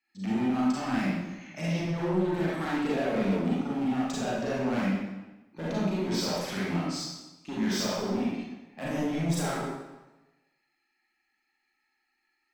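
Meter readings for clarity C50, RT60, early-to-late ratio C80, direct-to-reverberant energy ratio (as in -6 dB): -3.5 dB, 1.1 s, 0.5 dB, -8.0 dB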